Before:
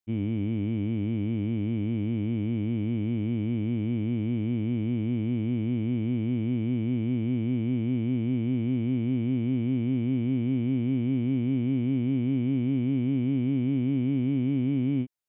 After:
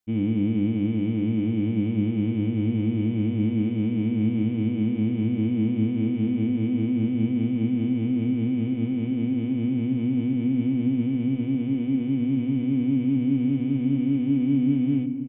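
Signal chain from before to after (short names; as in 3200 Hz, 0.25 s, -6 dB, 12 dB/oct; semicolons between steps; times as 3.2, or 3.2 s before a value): bell 150 Hz +3 dB 1.9 oct; comb 4 ms, depth 46%; limiter -20.5 dBFS, peak gain reduction 4.5 dB; dark delay 0.678 s, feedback 83%, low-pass 2400 Hz, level -17.5 dB; on a send at -9 dB: reverb RT60 0.85 s, pre-delay 6 ms; on the sum: gain +2.5 dB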